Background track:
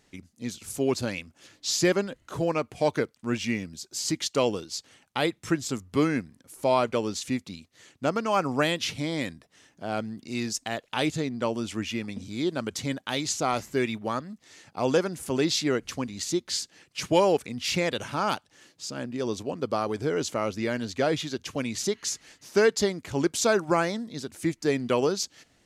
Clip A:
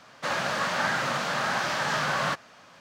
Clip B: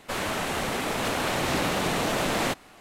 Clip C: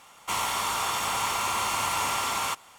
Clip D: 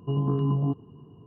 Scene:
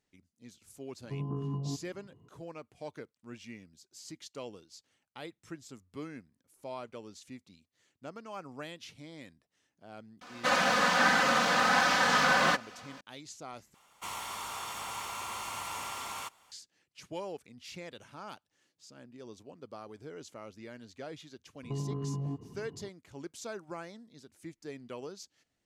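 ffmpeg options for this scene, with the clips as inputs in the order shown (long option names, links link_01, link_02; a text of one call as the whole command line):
ffmpeg -i bed.wav -i cue0.wav -i cue1.wav -i cue2.wav -i cue3.wav -filter_complex "[4:a]asplit=2[link_01][link_02];[0:a]volume=-18.5dB[link_03];[1:a]aecho=1:1:4:0.91[link_04];[link_02]acompressor=threshold=-32dB:ratio=6:attack=3.2:release=140:knee=1:detection=peak[link_05];[link_03]asplit=2[link_06][link_07];[link_06]atrim=end=13.744[link_08];[3:a]atrim=end=2.78,asetpts=PTS-STARTPTS,volume=-11.5dB[link_09];[link_07]atrim=start=16.516[link_10];[link_01]atrim=end=1.26,asetpts=PTS-STARTPTS,volume=-10.5dB,afade=type=in:duration=0.004:curve=hsin,afade=type=out:start_time=1.256:duration=0.004:curve=hsin,adelay=1030[link_11];[link_04]atrim=end=2.8,asetpts=PTS-STARTPTS,volume=-0.5dB,afade=type=in:duration=0.004:curve=hsin,afade=type=out:start_time=2.796:duration=0.004:curve=hsin,adelay=10210[link_12];[link_05]atrim=end=1.26,asetpts=PTS-STARTPTS,volume=-0.5dB,afade=type=in:duration=0.004:curve=hsin,afade=type=out:start_time=1.256:duration=0.004:curve=hsin,adelay=21630[link_13];[link_08][link_09]acrossfade=duration=0.004:curve1=hsin:curve2=hsin[link_14];[link_14][link_10]acrossfade=duration=0.004:curve1=hsin:curve2=hsin[link_15];[link_15][link_11][link_12][link_13]amix=inputs=4:normalize=0" out.wav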